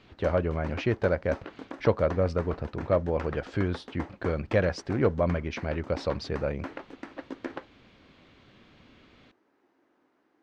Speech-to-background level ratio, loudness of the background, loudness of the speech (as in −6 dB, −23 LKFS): 13.5 dB, −42.5 LKFS, −29.0 LKFS